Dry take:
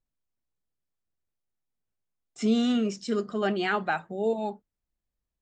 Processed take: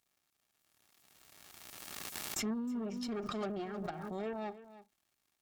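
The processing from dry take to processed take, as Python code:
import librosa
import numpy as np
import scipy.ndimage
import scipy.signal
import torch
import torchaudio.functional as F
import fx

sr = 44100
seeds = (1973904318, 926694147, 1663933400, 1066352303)

p1 = librosa.effects.preemphasis(x, coef=0.9, zi=[0.0])
p2 = fx.env_lowpass_down(p1, sr, base_hz=340.0, full_db=-37.5)
p3 = fx.cheby_harmonics(p2, sr, harmonics=(8,), levels_db=(-18,), full_scale_db=-33.5)
p4 = fx.dmg_crackle(p3, sr, seeds[0], per_s=210.0, level_db=-69.0)
p5 = fx.notch_comb(p4, sr, f0_hz=500.0)
p6 = p5 + fx.echo_single(p5, sr, ms=313, db=-15.5, dry=0)
p7 = fx.pre_swell(p6, sr, db_per_s=23.0)
y = p7 * 10.0 ** (7.5 / 20.0)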